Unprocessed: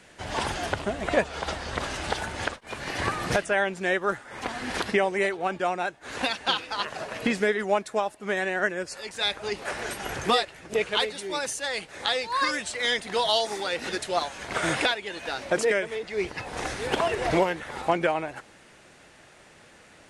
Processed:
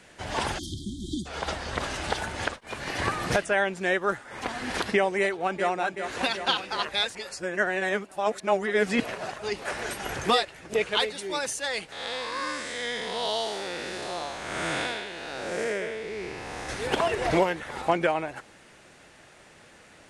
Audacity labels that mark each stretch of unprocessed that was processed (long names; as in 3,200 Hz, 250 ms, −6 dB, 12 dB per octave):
0.590000	1.260000	time-frequency box erased 370–3,100 Hz
5.200000	5.690000	delay throw 380 ms, feedback 70%, level −8 dB
6.880000	9.380000	reverse
11.920000	16.690000	spectrum smeared in time width 249 ms